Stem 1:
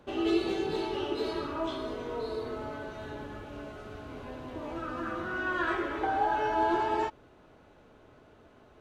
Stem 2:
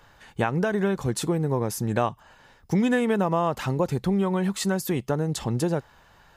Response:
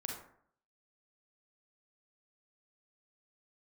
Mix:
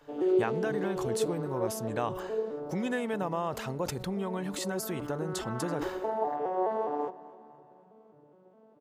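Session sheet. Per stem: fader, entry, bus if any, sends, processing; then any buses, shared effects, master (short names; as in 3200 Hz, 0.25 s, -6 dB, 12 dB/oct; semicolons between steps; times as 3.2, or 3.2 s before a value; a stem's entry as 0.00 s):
-2.0 dB, 0.00 s, no send, echo send -18 dB, arpeggiated vocoder major triad, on D3, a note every 0.208 s; ten-band EQ 500 Hz +7 dB, 2000 Hz -8 dB, 4000 Hz -7 dB
-7.5 dB, 0.00 s, no send, no echo send, sustainer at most 80 dB/s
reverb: off
echo: feedback echo 0.252 s, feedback 55%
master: low shelf 320 Hz -5 dB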